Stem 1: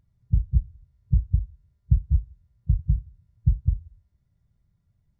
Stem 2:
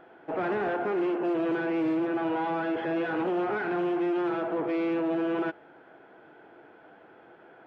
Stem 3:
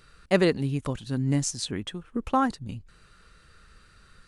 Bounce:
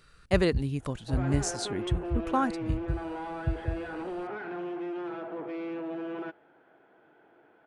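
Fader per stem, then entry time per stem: -9.5 dB, -8.0 dB, -3.5 dB; 0.00 s, 0.80 s, 0.00 s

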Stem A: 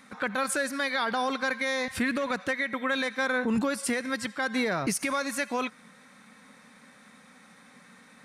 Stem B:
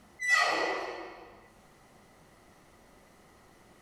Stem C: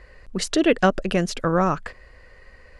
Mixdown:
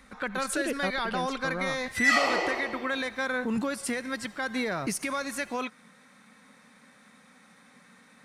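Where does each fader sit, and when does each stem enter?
-2.5 dB, +2.5 dB, -14.5 dB; 0.00 s, 1.75 s, 0.00 s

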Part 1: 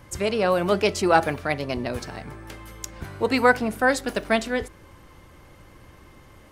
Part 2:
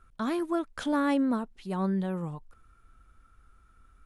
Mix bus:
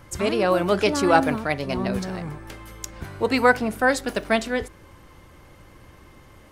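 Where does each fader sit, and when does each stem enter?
+0.5 dB, 0.0 dB; 0.00 s, 0.00 s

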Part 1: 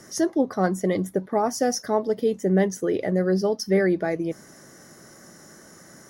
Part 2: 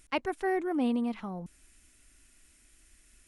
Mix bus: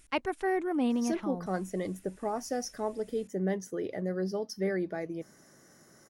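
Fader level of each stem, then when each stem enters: -10.5 dB, 0.0 dB; 0.90 s, 0.00 s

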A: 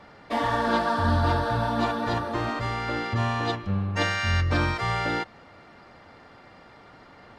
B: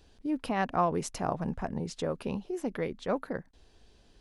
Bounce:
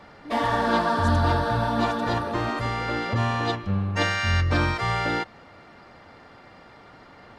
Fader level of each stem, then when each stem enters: +1.5 dB, -8.0 dB; 0.00 s, 0.00 s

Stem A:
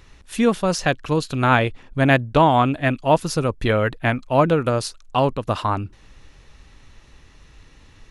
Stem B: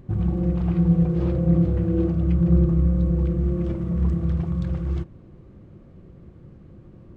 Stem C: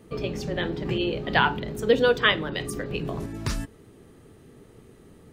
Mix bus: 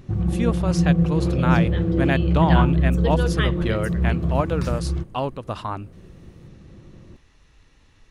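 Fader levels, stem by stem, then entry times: -7.0 dB, +0.5 dB, -7.0 dB; 0.00 s, 0.00 s, 1.15 s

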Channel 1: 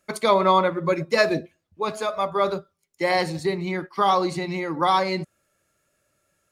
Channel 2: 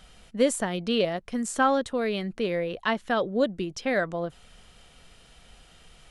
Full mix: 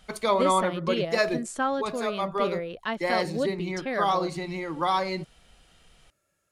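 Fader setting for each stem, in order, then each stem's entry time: -5.0 dB, -4.5 dB; 0.00 s, 0.00 s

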